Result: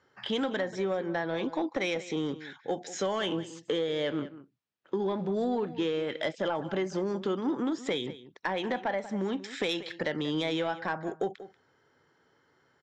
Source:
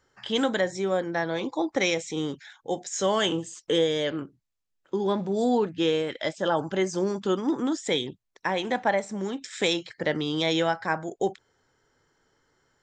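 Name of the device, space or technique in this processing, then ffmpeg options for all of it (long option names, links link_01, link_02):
AM radio: -filter_complex "[0:a]asettb=1/sr,asplit=3[link_01][link_02][link_03];[link_01]atrim=end=9.694[link_04];[link_02]atrim=start=9.69:end=10.16,asetpts=PTS-STARTPTS,afade=type=in:duration=0.004:curve=qsin,afade=type=out:start_time=0.466:duration=0.004:curve=qsin,highshelf=frequency=2800:gain=6.5[link_05];[link_03]atrim=start=10.156[link_06];[link_04][link_05]acrossfade=duration=0.004:curve1=hsin:curve2=qsin[link_07];[link_07][link_06]acrossfade=duration=0.004:curve1=qsin:curve2=hsin,highpass=110,lowpass=3900,acompressor=threshold=-28dB:ratio=5,asoftclip=type=tanh:threshold=-21.5dB,asplit=2[link_08][link_09];[link_09]adelay=186.6,volume=-15dB,highshelf=frequency=4000:gain=-4.2[link_10];[link_08][link_10]amix=inputs=2:normalize=0,volume=2dB"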